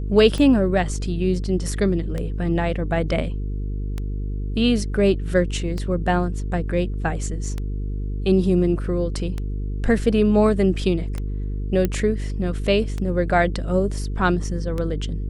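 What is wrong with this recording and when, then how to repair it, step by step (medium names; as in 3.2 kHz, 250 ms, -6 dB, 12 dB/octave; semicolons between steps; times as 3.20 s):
buzz 50 Hz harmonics 9 -26 dBFS
tick 33 1/3 rpm -15 dBFS
11.85 s: pop -9 dBFS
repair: de-click; de-hum 50 Hz, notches 9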